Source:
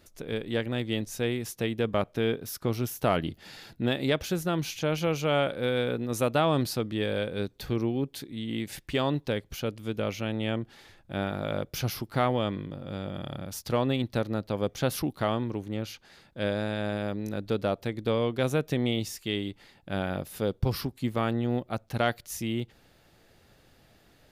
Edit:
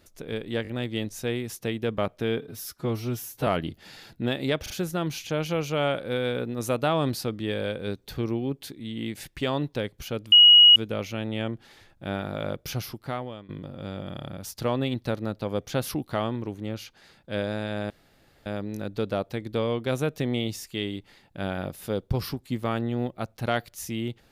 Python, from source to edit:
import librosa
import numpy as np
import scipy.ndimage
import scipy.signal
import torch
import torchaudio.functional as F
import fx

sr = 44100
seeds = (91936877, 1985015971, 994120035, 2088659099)

y = fx.edit(x, sr, fx.stutter(start_s=0.63, slice_s=0.02, count=3),
    fx.stretch_span(start_s=2.35, length_s=0.72, factor=1.5),
    fx.stutter(start_s=4.22, slice_s=0.04, count=3),
    fx.insert_tone(at_s=9.84, length_s=0.44, hz=2900.0, db=-9.5),
    fx.fade_out_to(start_s=11.74, length_s=0.83, floor_db=-19.5),
    fx.insert_room_tone(at_s=16.98, length_s=0.56), tone=tone)